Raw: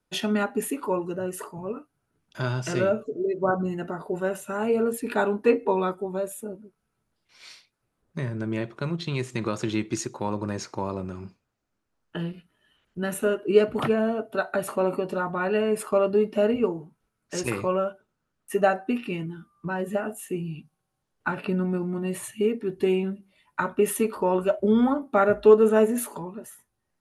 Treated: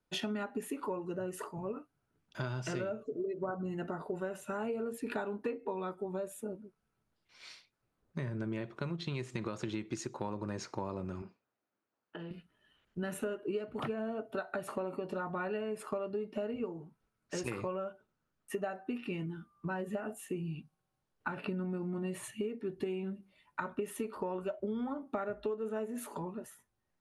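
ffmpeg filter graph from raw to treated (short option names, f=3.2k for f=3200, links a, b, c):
-filter_complex "[0:a]asettb=1/sr,asplit=3[a][b][c];[a]atrim=end=11.224[d];[b]atrim=start=11.22:end=12.31,asetpts=PTS-STARTPTS,afade=t=in:d=0.004:c=qsin,afade=t=out:st=1.086:d=0.004:c=qsin,highpass=380,aemphasis=mode=reproduction:type=bsi,acompressor=threshold=-37dB:ratio=3:attack=3.2:release=140:knee=1:detection=peak[e];[c]atrim=start=12.306[f];[d][e]acrossfade=d=0.004:c1=hsin:c2=qsin[g];[g][f]acrossfade=d=0.004:c1=qsin:c2=hsin,highshelf=f=9.3k:g=-10,acompressor=threshold=-29dB:ratio=12,volume=-4dB"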